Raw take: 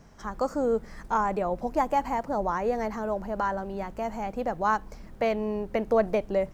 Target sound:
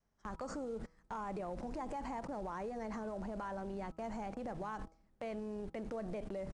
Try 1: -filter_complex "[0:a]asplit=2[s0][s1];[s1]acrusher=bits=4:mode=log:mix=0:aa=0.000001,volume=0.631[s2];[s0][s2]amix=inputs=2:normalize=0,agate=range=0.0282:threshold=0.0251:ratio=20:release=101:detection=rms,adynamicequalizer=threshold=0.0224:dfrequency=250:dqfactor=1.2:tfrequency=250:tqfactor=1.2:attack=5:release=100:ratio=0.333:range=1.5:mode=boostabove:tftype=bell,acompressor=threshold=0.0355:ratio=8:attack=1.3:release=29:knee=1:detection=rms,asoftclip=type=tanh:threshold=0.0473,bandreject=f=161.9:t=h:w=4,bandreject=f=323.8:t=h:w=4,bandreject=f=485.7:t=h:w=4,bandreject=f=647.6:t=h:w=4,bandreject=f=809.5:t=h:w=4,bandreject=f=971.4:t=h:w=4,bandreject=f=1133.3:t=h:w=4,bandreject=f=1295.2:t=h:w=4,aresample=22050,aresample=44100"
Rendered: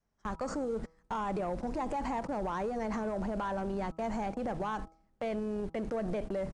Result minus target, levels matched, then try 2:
compression: peak gain reduction -9 dB
-filter_complex "[0:a]asplit=2[s0][s1];[s1]acrusher=bits=4:mode=log:mix=0:aa=0.000001,volume=0.631[s2];[s0][s2]amix=inputs=2:normalize=0,agate=range=0.0282:threshold=0.0251:ratio=20:release=101:detection=rms,adynamicequalizer=threshold=0.0224:dfrequency=250:dqfactor=1.2:tfrequency=250:tqfactor=1.2:attack=5:release=100:ratio=0.333:range=1.5:mode=boostabove:tftype=bell,acompressor=threshold=0.0112:ratio=8:attack=1.3:release=29:knee=1:detection=rms,asoftclip=type=tanh:threshold=0.0473,bandreject=f=161.9:t=h:w=4,bandreject=f=323.8:t=h:w=4,bandreject=f=485.7:t=h:w=4,bandreject=f=647.6:t=h:w=4,bandreject=f=809.5:t=h:w=4,bandreject=f=971.4:t=h:w=4,bandreject=f=1133.3:t=h:w=4,bandreject=f=1295.2:t=h:w=4,aresample=22050,aresample=44100"

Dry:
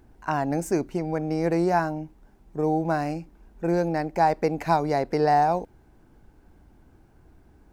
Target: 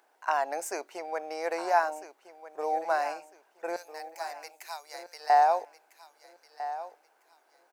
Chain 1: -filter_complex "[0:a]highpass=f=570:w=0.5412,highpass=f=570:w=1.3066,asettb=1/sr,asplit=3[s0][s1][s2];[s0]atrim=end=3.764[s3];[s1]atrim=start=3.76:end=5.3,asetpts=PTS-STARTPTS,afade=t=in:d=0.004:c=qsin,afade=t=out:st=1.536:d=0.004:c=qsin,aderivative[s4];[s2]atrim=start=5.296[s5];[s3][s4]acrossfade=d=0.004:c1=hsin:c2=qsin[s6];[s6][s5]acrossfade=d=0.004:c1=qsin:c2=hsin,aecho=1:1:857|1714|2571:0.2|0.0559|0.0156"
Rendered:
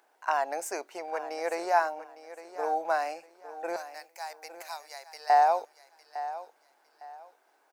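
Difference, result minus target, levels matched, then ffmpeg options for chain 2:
echo 444 ms early
-filter_complex "[0:a]highpass=f=570:w=0.5412,highpass=f=570:w=1.3066,asettb=1/sr,asplit=3[s0][s1][s2];[s0]atrim=end=3.764[s3];[s1]atrim=start=3.76:end=5.3,asetpts=PTS-STARTPTS,afade=t=in:d=0.004:c=qsin,afade=t=out:st=1.536:d=0.004:c=qsin,aderivative[s4];[s2]atrim=start=5.296[s5];[s3][s4]acrossfade=d=0.004:c1=hsin:c2=qsin[s6];[s6][s5]acrossfade=d=0.004:c1=qsin:c2=hsin,aecho=1:1:1301|2602|3903:0.2|0.0559|0.0156"

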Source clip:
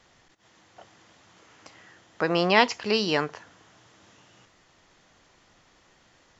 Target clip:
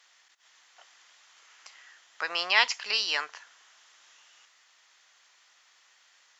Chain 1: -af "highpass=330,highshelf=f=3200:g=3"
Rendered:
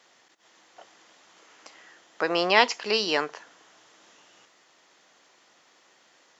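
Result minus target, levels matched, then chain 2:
250 Hz band +18.5 dB
-af "highpass=1300,highshelf=f=3200:g=3"

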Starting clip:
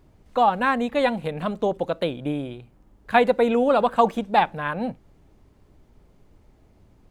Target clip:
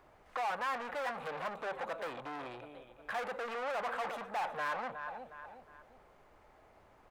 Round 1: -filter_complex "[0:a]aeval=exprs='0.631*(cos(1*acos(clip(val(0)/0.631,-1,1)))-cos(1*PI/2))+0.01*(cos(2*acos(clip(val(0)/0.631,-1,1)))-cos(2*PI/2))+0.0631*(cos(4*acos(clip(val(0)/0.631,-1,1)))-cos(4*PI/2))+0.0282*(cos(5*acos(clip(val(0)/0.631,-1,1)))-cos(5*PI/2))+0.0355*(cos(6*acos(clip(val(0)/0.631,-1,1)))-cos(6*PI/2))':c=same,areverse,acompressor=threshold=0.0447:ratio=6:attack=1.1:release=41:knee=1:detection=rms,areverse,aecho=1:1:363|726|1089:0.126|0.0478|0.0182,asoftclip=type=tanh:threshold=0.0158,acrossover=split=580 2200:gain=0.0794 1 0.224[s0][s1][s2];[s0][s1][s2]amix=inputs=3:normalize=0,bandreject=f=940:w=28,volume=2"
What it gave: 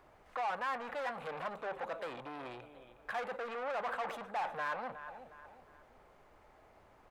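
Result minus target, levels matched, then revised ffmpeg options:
compression: peak gain reduction +6.5 dB
-filter_complex "[0:a]aeval=exprs='0.631*(cos(1*acos(clip(val(0)/0.631,-1,1)))-cos(1*PI/2))+0.01*(cos(2*acos(clip(val(0)/0.631,-1,1)))-cos(2*PI/2))+0.0631*(cos(4*acos(clip(val(0)/0.631,-1,1)))-cos(4*PI/2))+0.0282*(cos(5*acos(clip(val(0)/0.631,-1,1)))-cos(5*PI/2))+0.0355*(cos(6*acos(clip(val(0)/0.631,-1,1)))-cos(6*PI/2))':c=same,areverse,acompressor=threshold=0.112:ratio=6:attack=1.1:release=41:knee=1:detection=rms,areverse,aecho=1:1:363|726|1089:0.126|0.0478|0.0182,asoftclip=type=tanh:threshold=0.0158,acrossover=split=580 2200:gain=0.0794 1 0.224[s0][s1][s2];[s0][s1][s2]amix=inputs=3:normalize=0,bandreject=f=940:w=28,volume=2"

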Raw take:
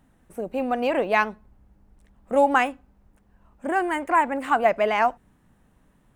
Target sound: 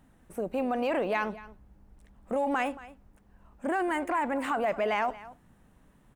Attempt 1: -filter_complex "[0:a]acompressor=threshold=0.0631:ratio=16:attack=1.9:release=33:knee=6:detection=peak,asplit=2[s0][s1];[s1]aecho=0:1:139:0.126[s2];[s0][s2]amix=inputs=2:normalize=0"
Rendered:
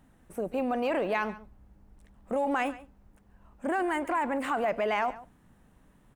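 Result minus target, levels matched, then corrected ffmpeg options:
echo 88 ms early
-filter_complex "[0:a]acompressor=threshold=0.0631:ratio=16:attack=1.9:release=33:knee=6:detection=peak,asplit=2[s0][s1];[s1]aecho=0:1:227:0.126[s2];[s0][s2]amix=inputs=2:normalize=0"

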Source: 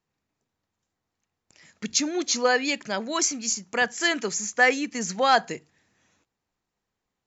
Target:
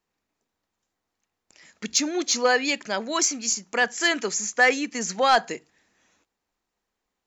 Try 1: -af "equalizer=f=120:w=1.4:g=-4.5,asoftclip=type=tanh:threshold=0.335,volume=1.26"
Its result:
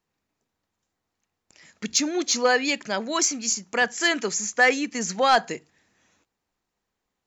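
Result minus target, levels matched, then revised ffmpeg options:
125 Hz band +3.0 dB
-af "equalizer=f=120:w=1.4:g=-12,asoftclip=type=tanh:threshold=0.335,volume=1.26"

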